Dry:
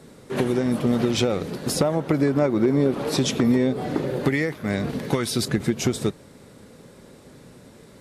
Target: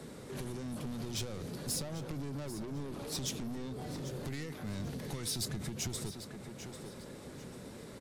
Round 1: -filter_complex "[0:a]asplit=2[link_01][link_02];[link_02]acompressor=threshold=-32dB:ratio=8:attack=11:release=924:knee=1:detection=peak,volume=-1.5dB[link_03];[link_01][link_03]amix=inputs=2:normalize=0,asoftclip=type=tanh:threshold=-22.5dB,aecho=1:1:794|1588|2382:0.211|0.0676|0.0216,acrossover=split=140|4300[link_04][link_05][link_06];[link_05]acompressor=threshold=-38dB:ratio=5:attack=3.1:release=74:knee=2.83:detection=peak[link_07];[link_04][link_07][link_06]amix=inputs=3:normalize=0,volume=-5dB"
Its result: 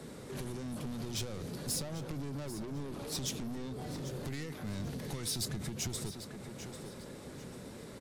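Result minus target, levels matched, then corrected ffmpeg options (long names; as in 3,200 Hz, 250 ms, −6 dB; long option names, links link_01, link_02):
downward compressor: peak gain reduction −10 dB
-filter_complex "[0:a]asplit=2[link_01][link_02];[link_02]acompressor=threshold=-43.5dB:ratio=8:attack=11:release=924:knee=1:detection=peak,volume=-1.5dB[link_03];[link_01][link_03]amix=inputs=2:normalize=0,asoftclip=type=tanh:threshold=-22.5dB,aecho=1:1:794|1588|2382:0.211|0.0676|0.0216,acrossover=split=140|4300[link_04][link_05][link_06];[link_05]acompressor=threshold=-38dB:ratio=5:attack=3.1:release=74:knee=2.83:detection=peak[link_07];[link_04][link_07][link_06]amix=inputs=3:normalize=0,volume=-5dB"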